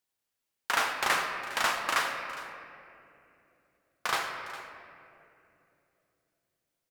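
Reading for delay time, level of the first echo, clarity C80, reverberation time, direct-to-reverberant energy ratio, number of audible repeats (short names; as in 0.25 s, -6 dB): 0.408 s, -17.0 dB, 5.0 dB, 2.8 s, 2.5 dB, 1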